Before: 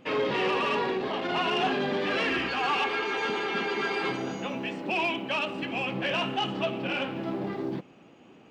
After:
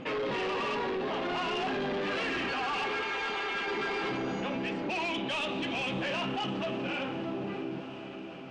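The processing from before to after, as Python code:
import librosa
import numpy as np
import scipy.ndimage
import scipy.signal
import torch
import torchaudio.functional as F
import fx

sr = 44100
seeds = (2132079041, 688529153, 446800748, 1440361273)

y = fx.fade_out_tail(x, sr, length_s=2.43)
y = fx.highpass(y, sr, hz=970.0, slope=6, at=(3.02, 3.68))
y = fx.peak_eq(y, sr, hz=3600.0, db=14.0, octaves=0.31, at=(5.14, 6.02))
y = 10.0 ** (-29.0 / 20.0) * np.tanh(y / 10.0 ** (-29.0 / 20.0))
y = fx.air_absorb(y, sr, metres=97.0)
y = fx.echo_diffused(y, sr, ms=627, feedback_pct=43, wet_db=-15.0)
y = fx.env_flatten(y, sr, amount_pct=50)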